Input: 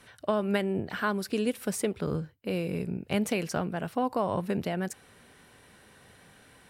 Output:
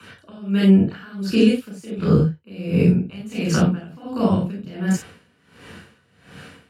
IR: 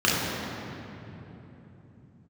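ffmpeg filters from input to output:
-filter_complex "[0:a]acrossover=split=270|3000[link_01][link_02][link_03];[link_02]acompressor=threshold=-35dB:ratio=6[link_04];[link_01][link_04][link_03]amix=inputs=3:normalize=0[link_05];[1:a]atrim=start_sample=2205,atrim=end_sample=4410[link_06];[link_05][link_06]afir=irnorm=-1:irlink=0,aeval=exprs='val(0)*pow(10,-22*(0.5-0.5*cos(2*PI*1.4*n/s))/20)':channel_layout=same"

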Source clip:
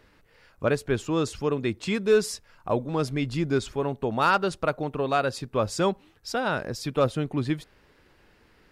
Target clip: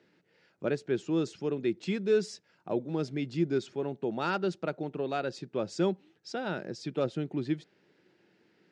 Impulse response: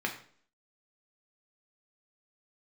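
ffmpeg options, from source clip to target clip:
-af "highpass=frequency=130:width=0.5412,highpass=frequency=130:width=1.3066,equalizer=frequency=180:width_type=q:width=4:gain=7,equalizer=frequency=350:width_type=q:width=4:gain=9,equalizer=frequency=1100:width_type=q:width=4:gain=-9,lowpass=frequency=7000:width=0.5412,lowpass=frequency=7000:width=1.3066,volume=-8dB"

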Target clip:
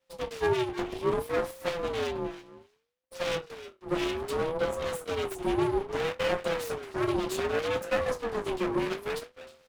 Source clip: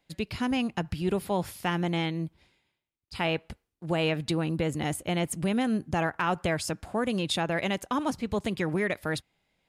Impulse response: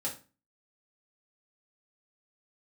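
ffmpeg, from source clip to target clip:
-filter_complex "[0:a]asplit=2[link_01][link_02];[link_02]adelay=310,highpass=300,lowpass=3400,asoftclip=type=hard:threshold=-24dB,volume=-12dB[link_03];[link_01][link_03]amix=inputs=2:normalize=0,asplit=2[link_04][link_05];[link_05]asoftclip=type=hard:threshold=-26.5dB,volume=-4.5dB[link_06];[link_04][link_06]amix=inputs=2:normalize=0[link_07];[1:a]atrim=start_sample=2205,asetrate=79380,aresample=44100[link_08];[link_07][link_08]afir=irnorm=-1:irlink=0,areverse,acompressor=mode=upward:threshold=-45dB:ratio=2.5,areverse,aeval=exprs='abs(val(0))':channel_layout=same,aeval=exprs='val(0)*sin(2*PI*440*n/s+440*0.2/0.63*sin(2*PI*0.63*n/s))':channel_layout=same"

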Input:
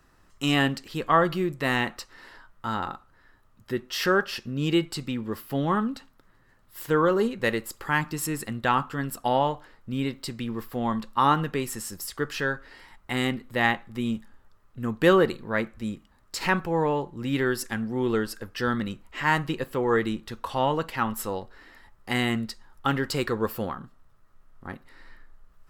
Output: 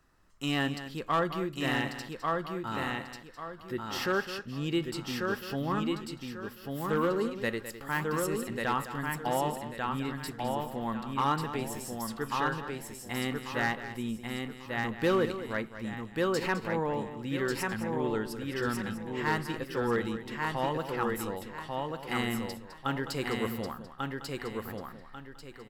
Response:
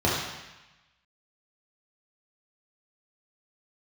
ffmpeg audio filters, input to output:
-filter_complex "[0:a]asplit=2[link_01][link_02];[link_02]aecho=0:1:1142|2284|3426|4568:0.668|0.194|0.0562|0.0163[link_03];[link_01][link_03]amix=inputs=2:normalize=0,asoftclip=type=hard:threshold=-13.5dB,asplit=2[link_04][link_05];[link_05]aecho=0:1:208:0.251[link_06];[link_04][link_06]amix=inputs=2:normalize=0,volume=-7dB"

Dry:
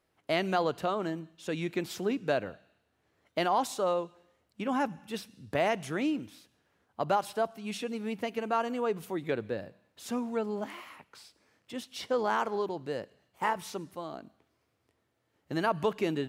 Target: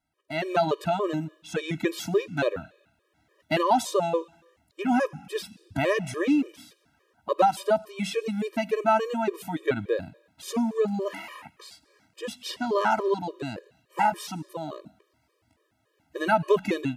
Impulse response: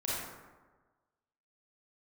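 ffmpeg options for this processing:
-af "dynaudnorm=framelen=300:gausssize=3:maxgain=11dB,asetrate=42336,aresample=44100,afftfilt=real='re*gt(sin(2*PI*3.5*pts/sr)*(1-2*mod(floor(b*sr/1024/320),2)),0)':imag='im*gt(sin(2*PI*3.5*pts/sr)*(1-2*mod(floor(b*sr/1024/320),2)),0)':win_size=1024:overlap=0.75,volume=-2dB"

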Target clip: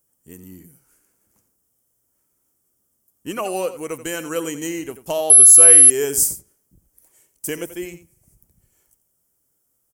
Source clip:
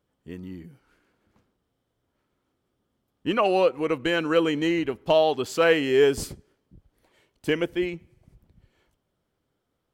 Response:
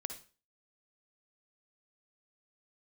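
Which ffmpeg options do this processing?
-filter_complex "[0:a]aecho=1:1:86:0.224,asettb=1/sr,asplit=3[link_01][link_02][link_03];[link_01]atrim=end=5.304[link_04];[link_02]atrim=start=5.3:end=5.9,asetpts=PTS-STARTPTS,afade=type=in:duration=0.004:curve=qsin,afade=type=out:start_time=0.596:duration=0.004:curve=qsin,aeval=exprs='val(0)+0.0447*sin(2*PI*11000*n/s)':channel_layout=same[link_05];[link_03]atrim=start=5.896[link_06];[link_04][link_05]acrossfade=duration=0.004:curve1=hsin:curve2=qsin[link_07];[link_07][link_06]acrossfade=duration=0.004:curve1=qsin:curve2=hsin,aexciter=amount=12.5:drive=7.7:freq=6000,volume=-4dB"

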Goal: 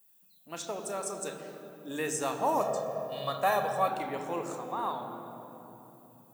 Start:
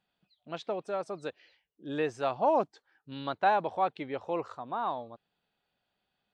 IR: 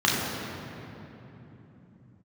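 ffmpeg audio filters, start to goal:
-filter_complex "[0:a]aemphasis=mode=production:type=75kf,asplit=2[link_01][link_02];[1:a]atrim=start_sample=2205,lowshelf=frequency=170:gain=-4.5[link_03];[link_02][link_03]afir=irnorm=-1:irlink=0,volume=-17.5dB[link_04];[link_01][link_04]amix=inputs=2:normalize=0,aexciter=amount=7:drive=5.8:freq=6100,asettb=1/sr,asplit=3[link_05][link_06][link_07];[link_05]atrim=end=2.604[link_08];[link_06]atrim=start=2.6:end=3.88,asetpts=PTS-STARTPTS,afade=type=in:duration=0.004:curve=qsin,afade=type=out:start_time=1.276:duration=0.004:curve=qsin,aecho=1:1:1.7:0.75,atrim=end_sample=56448[link_09];[link_07]atrim=start=3.876[link_10];[link_08][link_09]acrossfade=duration=0.004:curve1=hsin:curve2=qsin[link_11];[link_11][link_10]acrossfade=duration=0.004:curve1=qsin:curve2=hsin,volume=-5.5dB"

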